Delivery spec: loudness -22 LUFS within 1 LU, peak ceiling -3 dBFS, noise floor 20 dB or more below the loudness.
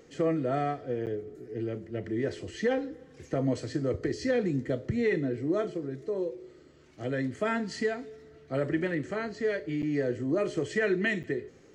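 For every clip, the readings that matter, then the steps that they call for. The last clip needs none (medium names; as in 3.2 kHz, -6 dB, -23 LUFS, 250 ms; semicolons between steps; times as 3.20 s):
dropouts 3; longest dropout 8.5 ms; loudness -31.0 LUFS; peak level -17.5 dBFS; loudness target -22.0 LUFS
-> interpolate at 1.06/9.82/11.23 s, 8.5 ms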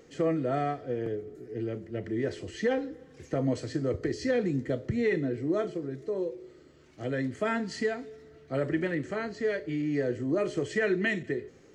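dropouts 0; loudness -31.0 LUFS; peak level -17.5 dBFS; loudness target -22.0 LUFS
-> trim +9 dB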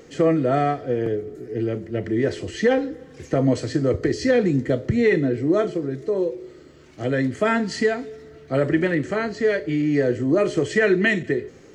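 loudness -22.0 LUFS; peak level -8.5 dBFS; noise floor -47 dBFS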